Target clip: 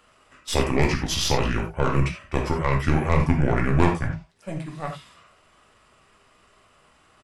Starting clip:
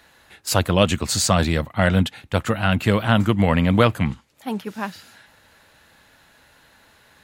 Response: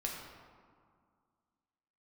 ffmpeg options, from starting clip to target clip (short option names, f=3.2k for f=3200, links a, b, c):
-filter_complex "[0:a]aeval=exprs='0.891*(cos(1*acos(clip(val(0)/0.891,-1,1)))-cos(1*PI/2))+0.1*(cos(6*acos(clip(val(0)/0.891,-1,1)))-cos(6*PI/2))+0.0141*(cos(8*acos(clip(val(0)/0.891,-1,1)))-cos(8*PI/2))':c=same,asetrate=32097,aresample=44100,atempo=1.37395[a];[1:a]atrim=start_sample=2205,atrim=end_sample=4410[b];[a][b]afir=irnorm=-1:irlink=0,volume=-3.5dB"